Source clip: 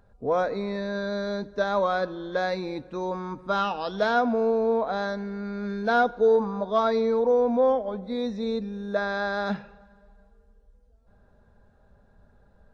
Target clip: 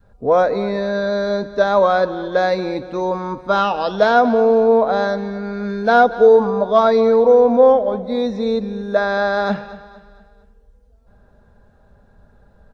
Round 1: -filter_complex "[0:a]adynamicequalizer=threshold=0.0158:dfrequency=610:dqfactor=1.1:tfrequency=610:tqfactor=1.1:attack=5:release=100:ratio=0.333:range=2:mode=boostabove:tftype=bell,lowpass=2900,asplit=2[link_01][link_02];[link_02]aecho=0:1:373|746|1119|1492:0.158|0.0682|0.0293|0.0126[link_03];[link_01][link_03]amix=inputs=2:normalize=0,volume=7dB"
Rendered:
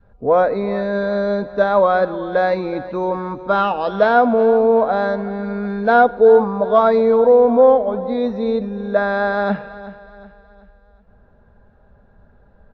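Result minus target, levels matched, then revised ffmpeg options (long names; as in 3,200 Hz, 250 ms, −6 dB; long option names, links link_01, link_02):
echo 142 ms late; 4,000 Hz band −5.5 dB
-filter_complex "[0:a]adynamicequalizer=threshold=0.0158:dfrequency=610:dqfactor=1.1:tfrequency=610:tqfactor=1.1:attack=5:release=100:ratio=0.333:range=2:mode=boostabove:tftype=bell,asplit=2[link_01][link_02];[link_02]aecho=0:1:231|462|693|924:0.158|0.0682|0.0293|0.0126[link_03];[link_01][link_03]amix=inputs=2:normalize=0,volume=7dB"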